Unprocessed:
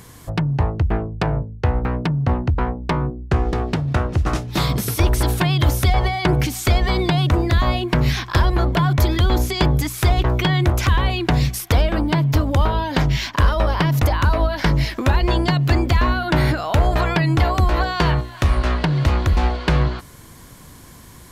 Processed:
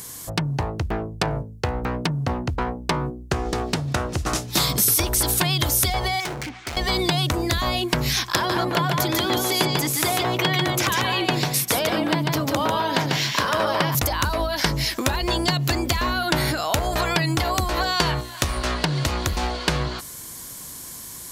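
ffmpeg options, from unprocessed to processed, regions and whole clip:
ffmpeg -i in.wav -filter_complex "[0:a]asettb=1/sr,asplit=3[link_01][link_02][link_03];[link_01]atrim=end=6.204[link_04];[link_02]atrim=start=6.2:end=6.77,asetpts=PTS-STARTPTS,afade=type=in:duration=0.004:curve=qsin,afade=type=out:start_time=0.566:duration=0.004:curve=qsin,lowpass=frequency=2100:width=0.5412,lowpass=frequency=2100:width=1.3066,tiltshelf=frequency=1100:gain=-5.5,volume=26.5dB,asoftclip=hard,volume=-26.5dB[link_05];[link_03]atrim=start=6.766[link_06];[link_04][link_05]acrossfade=duration=0.004:curve1=hsin:curve2=qsin[link_07];[link_07][link_06]acrossfade=duration=0.004:curve1=qsin:curve2=hsin,asettb=1/sr,asplit=3[link_08][link_09][link_10];[link_08]atrim=end=8.354[link_11];[link_09]atrim=start=8.35:end=13.95,asetpts=PTS-STARTPTS,afade=type=in:duration=0.004:curve=qsin,afade=type=out:start_time=5.596:duration=0.004:curve=qsin,highpass=frequency=120:width=0.5412,highpass=frequency=120:width=1.3066,bass=frequency=250:gain=-2,treble=frequency=4000:gain=-7,aecho=1:1:145:0.668,atrim=end_sample=246960[link_12];[link_10]atrim=start=13.946[link_13];[link_11][link_12]acrossfade=duration=0.004:curve1=hsin:curve2=qsin[link_14];[link_14][link_13]acrossfade=duration=0.004:curve1=qsin:curve2=hsin,bass=frequency=250:gain=1,treble=frequency=4000:gain=13,acompressor=threshold=-14dB:ratio=6,lowshelf=frequency=160:gain=-10" out.wav

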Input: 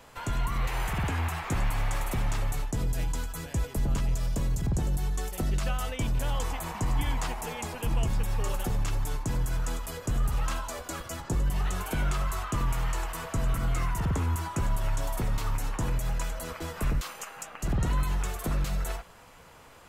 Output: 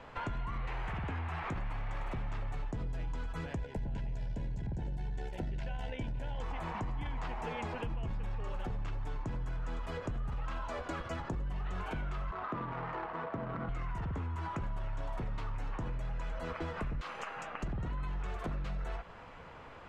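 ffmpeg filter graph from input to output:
ffmpeg -i in.wav -filter_complex "[0:a]asettb=1/sr,asplit=3[link_01][link_02][link_03];[link_01]atrim=end=3.564[link_04];[link_02]atrim=start=3.56:end=6.41,asetpts=PTS-STARTPTS,afade=type=in:duration=0.004:curve=qsin,afade=type=out:start_time=2.846:duration=0.004:curve=qsin,tremolo=f=69:d=0.571,asuperstop=centerf=1200:order=8:qfactor=3.5[link_05];[link_03]atrim=start=6.406[link_06];[link_04][link_05]acrossfade=duration=0.004:curve1=hsin:curve2=qsin[link_07];[link_07][link_06]acrossfade=duration=0.004:curve1=qsin:curve2=hsin,asettb=1/sr,asplit=3[link_08][link_09][link_10];[link_08]atrim=end=12.314[link_11];[link_09]atrim=start=12.31:end=13.69,asetpts=PTS-STARTPTS,afade=type=in:duration=0.004:curve=qsin,afade=type=out:start_time=1.376:duration=0.004:curve=qsin,highpass=200,adynamicsmooth=sensitivity=3:basefreq=950[link_12];[link_10]atrim=start=13.686[link_13];[link_11][link_12]acrossfade=duration=0.004:curve1=hsin:curve2=qsin[link_14];[link_14][link_13]acrossfade=duration=0.004:curve1=qsin:curve2=hsin,lowpass=2600,alimiter=level_in=3dB:limit=-24dB:level=0:latency=1:release=10,volume=-3dB,acompressor=threshold=-37dB:ratio=6,volume=2.5dB" out.wav

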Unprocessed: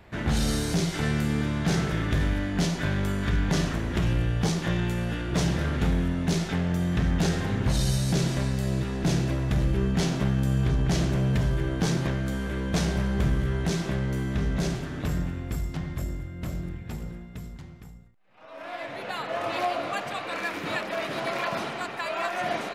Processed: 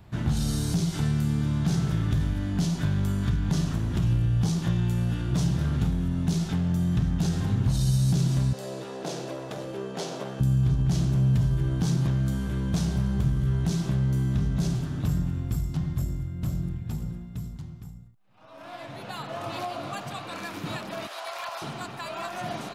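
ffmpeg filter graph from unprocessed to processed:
ffmpeg -i in.wav -filter_complex "[0:a]asettb=1/sr,asplit=3[link_01][link_02][link_03];[link_01]atrim=end=8.534[link_04];[link_02]atrim=start=8.53:end=10.4,asetpts=PTS-STARTPTS,afade=type=in:duration=0.004:curve=qsin,afade=type=out:start_time=1.866:duration=0.004:curve=qsin,highpass=frequency=500:width_type=q:width=3.2,highshelf=frequency=9800:gain=-9[link_05];[link_03]atrim=start=10.396[link_06];[link_04][link_05]acrossfade=duration=0.004:curve1=hsin:curve2=qsin[link_07];[link_07][link_06]acrossfade=duration=0.004:curve1=qsin:curve2=hsin,asettb=1/sr,asplit=3[link_08][link_09][link_10];[link_08]atrim=end=21.074[link_11];[link_09]atrim=start=21.07:end=21.62,asetpts=PTS-STARTPTS,afade=type=in:duration=0.004:curve=qsin,afade=type=out:start_time=0.546:duration=0.004:curve=qsin,highpass=frequency=610:width=0.5412,highpass=frequency=610:width=1.3066,asoftclip=type=hard:threshold=-22dB[link_12];[link_10]atrim=start=21.616[link_13];[link_11][link_12]acrossfade=duration=0.004:curve1=hsin:curve2=qsin[link_14];[link_14][link_13]acrossfade=duration=0.004:curve1=qsin:curve2=hsin,highshelf=frequency=11000:gain=3.5,acompressor=threshold=-24dB:ratio=6,equalizer=frequency=125:width_type=o:width=1:gain=8,equalizer=frequency=500:width_type=o:width=1:gain=-7,equalizer=frequency=2000:width_type=o:width=1:gain=-9" out.wav

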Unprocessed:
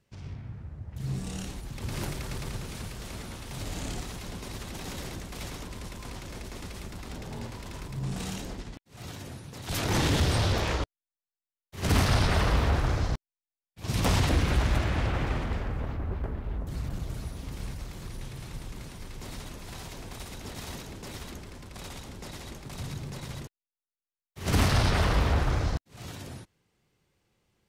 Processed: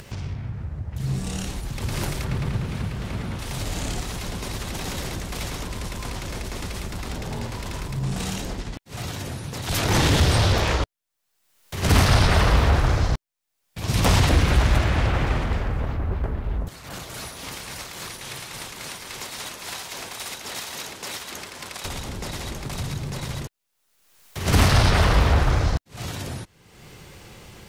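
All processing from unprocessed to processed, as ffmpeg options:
ffmpeg -i in.wav -filter_complex "[0:a]asettb=1/sr,asplit=3[link_01][link_02][link_03];[link_01]atrim=end=2.244[link_04];[link_02]atrim=start=2.24:end=3.39,asetpts=PTS-STARTPTS,afade=type=in:duration=0.004:curve=qsin,afade=type=out:start_time=1.146:duration=0.004:curve=qsin,highpass=frequency=180:poles=1,bass=frequency=250:gain=12,treble=frequency=4000:gain=-11[link_05];[link_03]atrim=start=3.386[link_06];[link_04][link_05]acrossfade=duration=0.004:curve1=hsin:curve2=qsin[link_07];[link_07][link_06]acrossfade=duration=0.004:curve1=qsin:curve2=hsin,asettb=1/sr,asplit=3[link_08][link_09][link_10];[link_08]atrim=end=16.684[link_11];[link_09]atrim=start=16.68:end=21.85,asetpts=PTS-STARTPTS,afade=type=in:duration=0.004:curve=qsin,afade=type=out:start_time=5.166:duration=0.004:curve=qsin,highpass=frequency=940:poles=1,asoftclip=type=hard:threshold=-34.5dB,tremolo=f=3.6:d=0.48[link_12];[link_10]atrim=start=21.846[link_13];[link_11][link_12]acrossfade=duration=0.004:curve1=hsin:curve2=qsin[link_14];[link_14][link_13]acrossfade=duration=0.004:curve1=qsin:curve2=hsin,equalizer=frequency=270:width=1.1:gain=-2.5,acompressor=mode=upward:threshold=-32dB:ratio=2.5,volume=7dB" out.wav

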